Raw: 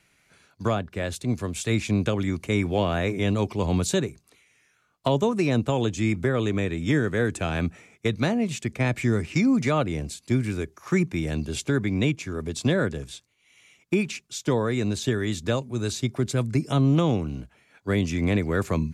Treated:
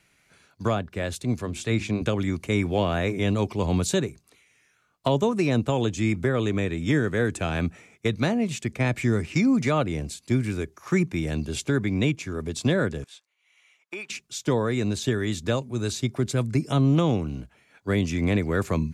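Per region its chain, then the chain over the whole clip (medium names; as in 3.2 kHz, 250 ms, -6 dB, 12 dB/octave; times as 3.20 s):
1.41–2.02 s: treble shelf 7.9 kHz -10.5 dB + hum notches 50/100/150/200/250/300/350 Hz
13.04–14.10 s: high-pass 840 Hz + treble shelf 3.2 kHz -10.5 dB
whole clip: none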